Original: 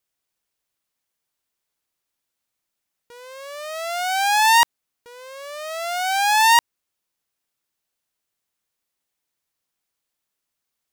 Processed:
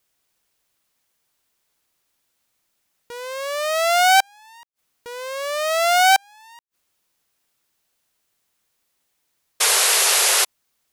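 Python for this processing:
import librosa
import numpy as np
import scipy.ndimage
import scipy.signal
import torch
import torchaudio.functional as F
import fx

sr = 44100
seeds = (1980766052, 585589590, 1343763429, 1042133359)

y = fx.gate_flip(x, sr, shuts_db=-16.0, range_db=-41)
y = fx.spec_paint(y, sr, seeds[0], shape='noise', start_s=9.6, length_s=0.85, low_hz=380.0, high_hz=12000.0, level_db=-26.0)
y = y * librosa.db_to_amplitude(9.0)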